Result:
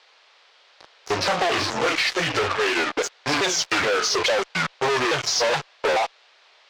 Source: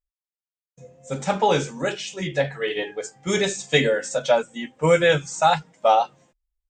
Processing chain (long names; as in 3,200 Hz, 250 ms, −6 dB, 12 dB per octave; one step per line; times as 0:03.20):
pitch shifter swept by a sawtooth −7 semitones, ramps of 426 ms
fuzz pedal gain 39 dB, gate −38 dBFS
three-way crossover with the lows and the highs turned down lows −14 dB, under 430 Hz, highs −21 dB, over 6,900 Hz
downward compressor, threshold −18 dBFS, peak gain reduction 6 dB
noise in a band 470–4,500 Hz −56 dBFS